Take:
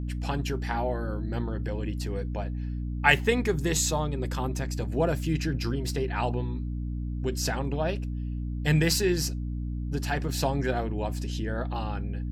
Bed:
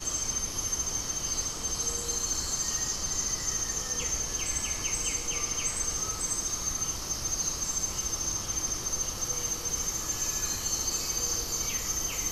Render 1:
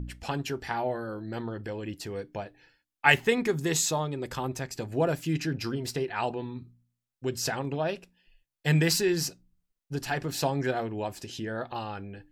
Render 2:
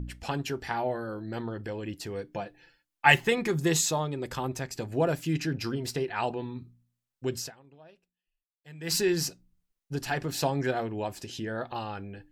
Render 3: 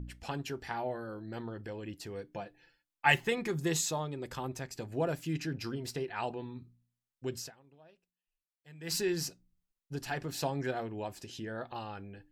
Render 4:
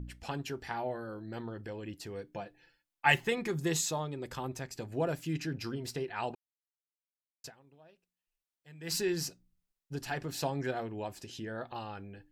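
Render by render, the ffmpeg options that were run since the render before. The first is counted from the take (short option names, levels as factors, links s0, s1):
-af "bandreject=f=60:t=h:w=4,bandreject=f=120:t=h:w=4,bandreject=f=180:t=h:w=4,bandreject=f=240:t=h:w=4,bandreject=f=300:t=h:w=4"
-filter_complex "[0:a]asettb=1/sr,asplit=3[s0][s1][s2];[s0]atrim=end=2.334[s3];[s1]atrim=start=2.33:end=3.81,asetpts=PTS-STARTPTS,afade=t=in:d=0.004:c=qsin,afade=t=out:st=1.476:d=0.004:c=qsin,aecho=1:1:5.8:0.49,atrim=end_sample=65268[s4];[s2]atrim=start=3.806[s5];[s3][s4]acrossfade=d=0.004:c1=hsin:c2=qsin[s6];[s6][s5]acrossfade=d=0.004:c1=qsin:c2=hsin,asplit=3[s7][s8][s9];[s7]atrim=end=7.56,asetpts=PTS-STARTPTS,afade=t=out:st=7.38:d=0.18:c=qua:silence=0.0630957[s10];[s8]atrim=start=7.56:end=8.77,asetpts=PTS-STARTPTS,volume=0.0631[s11];[s9]atrim=start=8.77,asetpts=PTS-STARTPTS,afade=t=in:d=0.18:c=qua:silence=0.0630957[s12];[s10][s11][s12]concat=n=3:v=0:a=1"
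-af "volume=0.501"
-filter_complex "[0:a]asplit=3[s0][s1][s2];[s0]atrim=end=6.35,asetpts=PTS-STARTPTS,afade=t=out:st=6.346:d=0.004:c=hsin[s3];[s1]atrim=start=6.35:end=7.44,asetpts=PTS-STARTPTS,volume=0[s4];[s2]atrim=start=7.44,asetpts=PTS-STARTPTS,afade=t=in:d=0.004:c=hsin[s5];[s3][s4][s5]concat=n=3:v=0:a=1"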